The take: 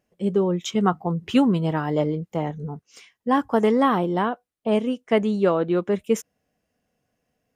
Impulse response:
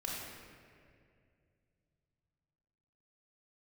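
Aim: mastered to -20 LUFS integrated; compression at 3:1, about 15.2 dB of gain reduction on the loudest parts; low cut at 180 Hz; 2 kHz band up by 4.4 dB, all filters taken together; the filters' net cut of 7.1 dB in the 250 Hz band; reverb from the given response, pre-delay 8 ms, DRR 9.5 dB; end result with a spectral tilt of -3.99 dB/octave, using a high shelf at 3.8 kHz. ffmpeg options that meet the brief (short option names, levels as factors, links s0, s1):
-filter_complex "[0:a]highpass=180,equalizer=f=250:t=o:g=-7.5,equalizer=f=2000:t=o:g=6.5,highshelf=f=3800:g=-4,acompressor=threshold=0.0141:ratio=3,asplit=2[s0][s1];[1:a]atrim=start_sample=2205,adelay=8[s2];[s1][s2]afir=irnorm=-1:irlink=0,volume=0.266[s3];[s0][s3]amix=inputs=2:normalize=0,volume=7.5"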